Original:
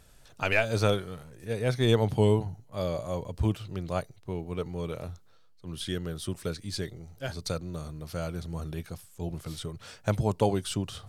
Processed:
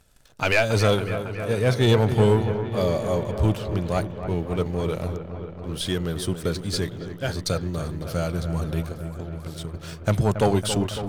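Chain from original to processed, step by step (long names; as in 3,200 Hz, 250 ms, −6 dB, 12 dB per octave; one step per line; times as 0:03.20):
0:08.83–0:09.74: downward compressor 6 to 1, threshold −40 dBFS, peak gain reduction 11.5 dB
leveller curve on the samples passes 2
delay with a low-pass on its return 277 ms, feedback 75%, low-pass 2,200 Hz, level −10 dB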